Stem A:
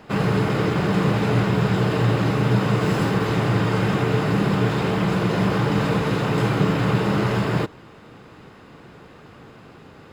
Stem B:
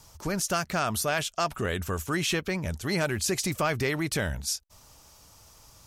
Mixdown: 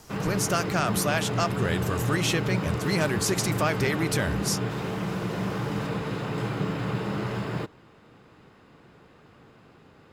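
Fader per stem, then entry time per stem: -9.0 dB, +1.0 dB; 0.00 s, 0.00 s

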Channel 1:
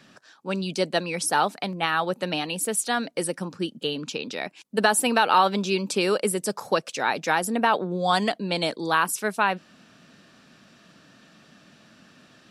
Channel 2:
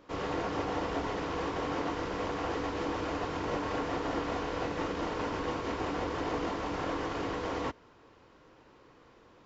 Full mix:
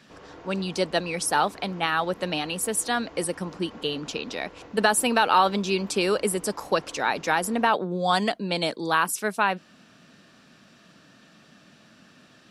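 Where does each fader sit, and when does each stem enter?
-0.5 dB, -12.5 dB; 0.00 s, 0.00 s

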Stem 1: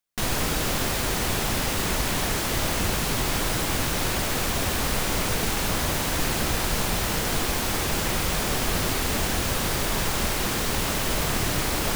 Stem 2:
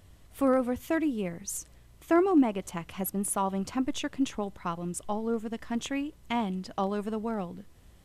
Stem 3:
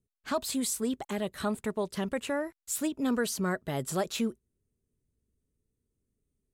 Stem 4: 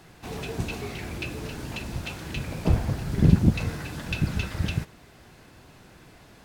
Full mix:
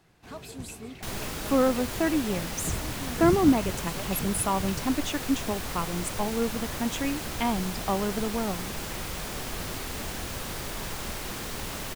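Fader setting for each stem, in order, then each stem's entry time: -9.5 dB, +2.0 dB, -12.0 dB, -11.5 dB; 0.85 s, 1.10 s, 0.00 s, 0.00 s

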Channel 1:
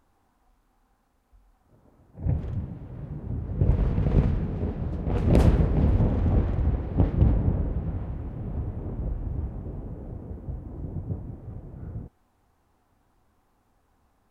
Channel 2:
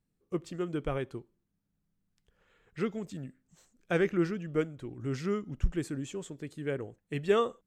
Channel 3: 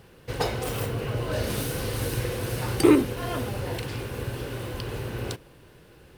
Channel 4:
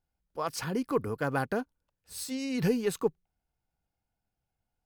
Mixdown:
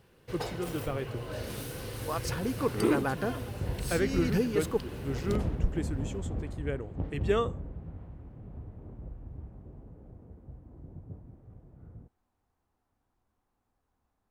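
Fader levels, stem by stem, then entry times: -12.5 dB, -1.5 dB, -9.5 dB, -1.5 dB; 0.00 s, 0.00 s, 0.00 s, 1.70 s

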